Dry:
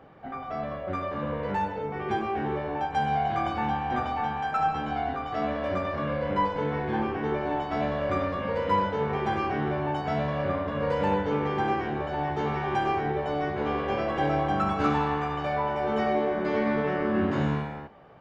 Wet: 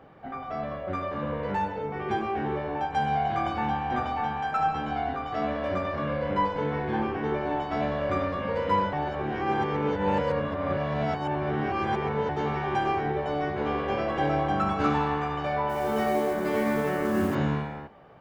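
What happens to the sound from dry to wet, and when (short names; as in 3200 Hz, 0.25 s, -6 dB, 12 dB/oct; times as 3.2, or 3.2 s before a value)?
8.93–12.29 reverse
15.69–17.35 modulation noise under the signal 24 dB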